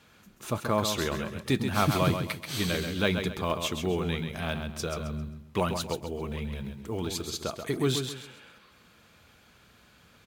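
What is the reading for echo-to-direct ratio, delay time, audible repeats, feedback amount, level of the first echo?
−6.5 dB, 133 ms, 3, 32%, −7.0 dB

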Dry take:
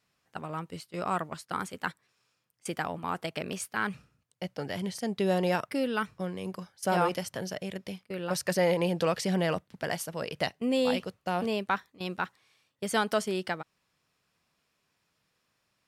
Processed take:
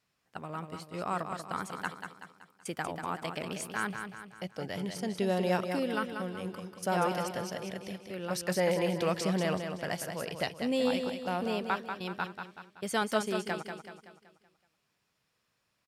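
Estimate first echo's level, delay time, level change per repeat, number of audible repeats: −7.0 dB, 189 ms, −6.5 dB, 5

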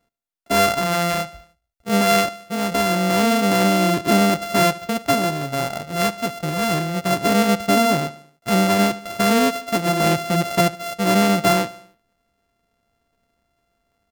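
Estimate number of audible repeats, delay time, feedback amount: 3, 74 ms, 57%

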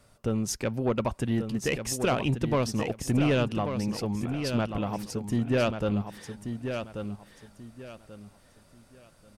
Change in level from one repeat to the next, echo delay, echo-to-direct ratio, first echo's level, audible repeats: −11.5 dB, 1,136 ms, −7.0 dB, −7.5 dB, 3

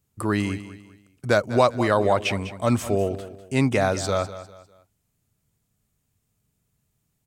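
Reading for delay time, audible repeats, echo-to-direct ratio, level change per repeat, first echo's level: 200 ms, 3, −13.5 dB, −9.5 dB, −14.0 dB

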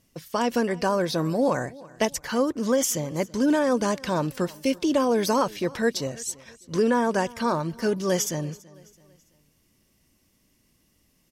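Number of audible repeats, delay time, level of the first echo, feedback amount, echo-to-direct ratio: 2, 331 ms, −22.0 dB, 43%, −21.0 dB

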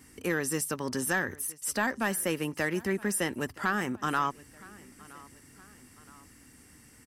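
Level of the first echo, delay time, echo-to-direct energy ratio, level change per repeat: −22.0 dB, 969 ms, −21.0 dB, −6.0 dB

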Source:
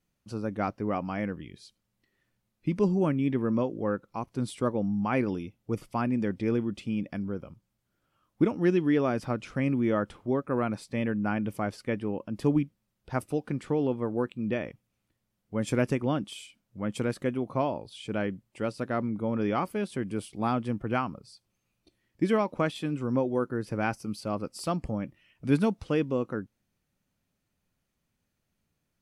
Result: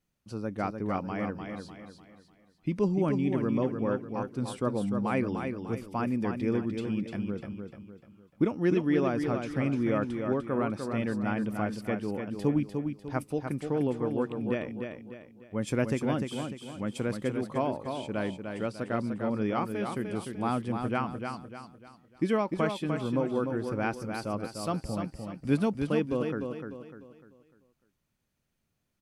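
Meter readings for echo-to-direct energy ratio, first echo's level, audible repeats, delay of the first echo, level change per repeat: −5.5 dB, −6.0 dB, 4, 299 ms, −8.0 dB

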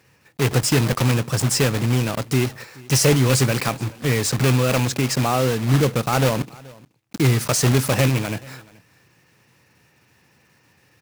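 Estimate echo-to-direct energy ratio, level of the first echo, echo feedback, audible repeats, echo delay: −23.5 dB, −23.5 dB, repeats not evenly spaced, 1, 428 ms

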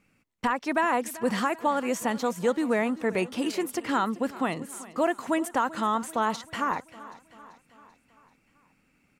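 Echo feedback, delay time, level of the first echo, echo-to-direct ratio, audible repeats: 55%, 388 ms, −18.0 dB, −16.5 dB, 4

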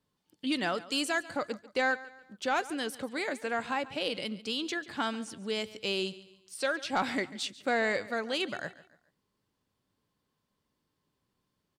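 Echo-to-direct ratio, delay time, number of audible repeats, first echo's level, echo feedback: −17.5 dB, 141 ms, 3, −18.0 dB, 38%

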